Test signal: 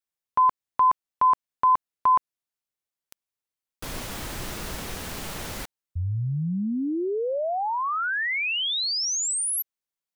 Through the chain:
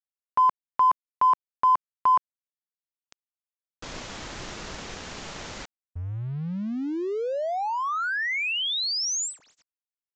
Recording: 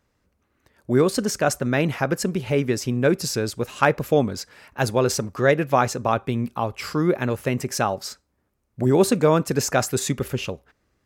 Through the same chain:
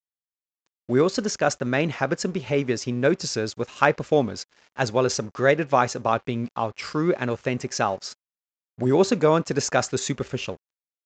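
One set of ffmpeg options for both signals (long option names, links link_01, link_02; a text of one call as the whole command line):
ffmpeg -i in.wav -af "aeval=exprs='sgn(val(0))*max(abs(val(0))-0.00473,0)':channel_layout=same,lowshelf=frequency=190:gain=-5.5,aresample=16000,aresample=44100" out.wav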